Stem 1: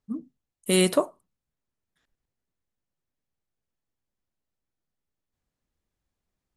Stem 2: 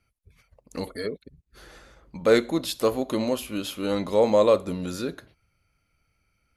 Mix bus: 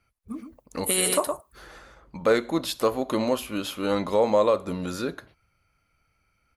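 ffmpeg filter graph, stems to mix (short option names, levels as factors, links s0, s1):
-filter_complex "[0:a]agate=range=0.0224:threshold=0.00112:ratio=3:detection=peak,aemphasis=mode=production:type=bsi,adelay=200,volume=1.12,asplit=2[s0][s1];[s1]volume=0.398[s2];[1:a]volume=0.944[s3];[s2]aecho=0:1:115:1[s4];[s0][s3][s4]amix=inputs=3:normalize=0,equalizer=f=1100:w=0.84:g=6,alimiter=limit=0.282:level=0:latency=1:release=224"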